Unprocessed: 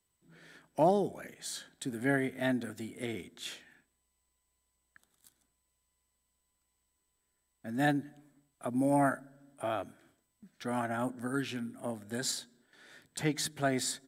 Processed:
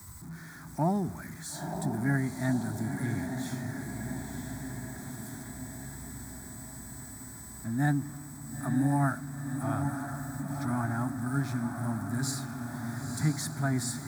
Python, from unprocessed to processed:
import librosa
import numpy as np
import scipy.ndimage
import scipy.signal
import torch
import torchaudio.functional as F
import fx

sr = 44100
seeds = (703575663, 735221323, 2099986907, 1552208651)

y = x + 0.5 * 10.0 ** (-42.5 / 20.0) * np.sign(x)
y = scipy.signal.sosfilt(scipy.signal.butter(2, 58.0, 'highpass', fs=sr, output='sos'), y)
y = fx.peak_eq(y, sr, hz=84.0, db=12.5, octaves=2.7)
y = fx.fixed_phaser(y, sr, hz=1200.0, stages=4)
y = fx.echo_diffused(y, sr, ms=960, feedback_pct=66, wet_db=-6.0)